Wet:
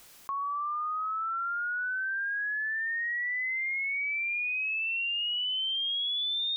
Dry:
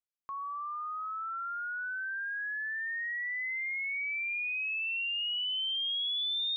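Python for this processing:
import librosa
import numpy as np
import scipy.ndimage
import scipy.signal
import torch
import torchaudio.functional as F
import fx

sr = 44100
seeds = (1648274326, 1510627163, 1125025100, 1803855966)

y = fx.env_flatten(x, sr, amount_pct=70)
y = y * librosa.db_to_amplitude(1.5)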